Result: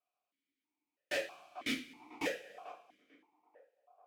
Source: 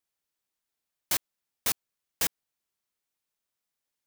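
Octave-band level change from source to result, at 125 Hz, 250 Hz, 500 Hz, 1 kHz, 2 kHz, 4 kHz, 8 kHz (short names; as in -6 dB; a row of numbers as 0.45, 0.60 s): -9.0, +6.5, +6.5, -3.0, 0.0, -6.5, -18.5 dB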